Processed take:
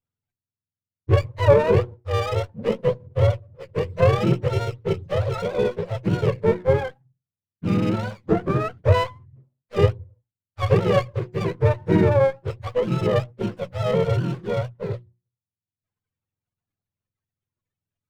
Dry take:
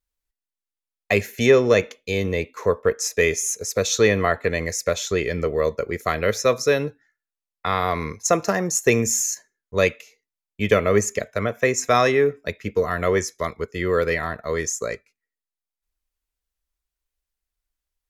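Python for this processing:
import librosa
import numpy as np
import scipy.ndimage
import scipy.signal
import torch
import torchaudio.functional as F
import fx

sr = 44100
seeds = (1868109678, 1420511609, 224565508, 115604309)

y = fx.octave_mirror(x, sr, pivot_hz=480.0)
y = fx.hum_notches(y, sr, base_hz=60, count=6)
y = fx.running_max(y, sr, window=9)
y = y * librosa.db_to_amplitude(1.0)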